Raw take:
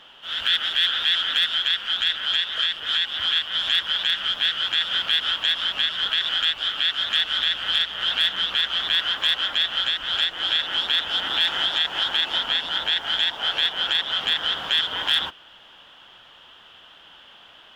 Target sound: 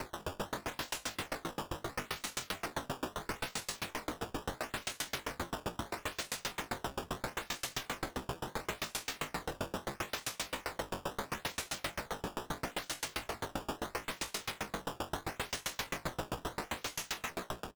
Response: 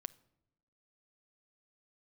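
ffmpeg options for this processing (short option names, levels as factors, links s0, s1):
-filter_complex "[0:a]highpass=77,equalizer=f=730:w=6.4:g=5,bandreject=f=820:w=22,acrossover=split=370[s0][s1];[s1]acompressor=threshold=0.0282:ratio=6[s2];[s0][s2]amix=inputs=2:normalize=0,acrossover=split=340|820[s3][s4][s5];[s5]alimiter=level_in=2.11:limit=0.0631:level=0:latency=1:release=42,volume=0.473[s6];[s3][s4][s6]amix=inputs=3:normalize=0,dynaudnorm=f=180:g=9:m=4.47,aresample=16000,asoftclip=type=tanh:threshold=0.0398,aresample=44100,acrusher=samples=24:mix=1:aa=0.000001:lfo=1:lforange=38.4:lforate=0.75,aeval=exprs='0.01*(abs(mod(val(0)/0.01+3,4)-2)-1)':c=same,asetrate=88200,aresample=44100,atempo=0.5,asplit=2[s7][s8];[s8]adelay=163.3,volume=0.282,highshelf=f=4000:g=-3.67[s9];[s7][s9]amix=inputs=2:normalize=0,aeval=exprs='val(0)*pow(10,-33*if(lt(mod(7.6*n/s,1),2*abs(7.6)/1000),1-mod(7.6*n/s,1)/(2*abs(7.6)/1000),(mod(7.6*n/s,1)-2*abs(7.6)/1000)/(1-2*abs(7.6)/1000))/20)':c=same,volume=4.73"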